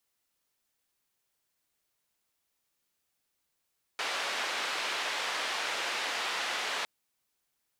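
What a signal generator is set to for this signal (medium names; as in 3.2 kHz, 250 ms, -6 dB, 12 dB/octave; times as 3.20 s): noise band 540–3200 Hz, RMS -33.5 dBFS 2.86 s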